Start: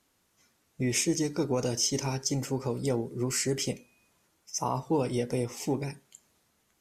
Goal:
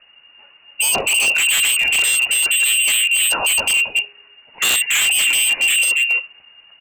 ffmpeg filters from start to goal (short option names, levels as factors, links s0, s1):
-filter_complex "[0:a]lowshelf=f=150:t=q:w=1.5:g=13.5,asplit=2[s0][s1];[s1]aecho=0:1:276:0.355[s2];[s0][s2]amix=inputs=2:normalize=0,flanger=delay=0.7:depth=2.3:regen=-58:speed=0.86:shape=triangular,apsyclip=21.1,lowpass=f=2500:t=q:w=0.5098,lowpass=f=2500:t=q:w=0.6013,lowpass=f=2500:t=q:w=0.9,lowpass=f=2500:t=q:w=2.563,afreqshift=-2900,aeval=exprs='0.473*(abs(mod(val(0)/0.473+3,4)-2)-1)':c=same,volume=0.596"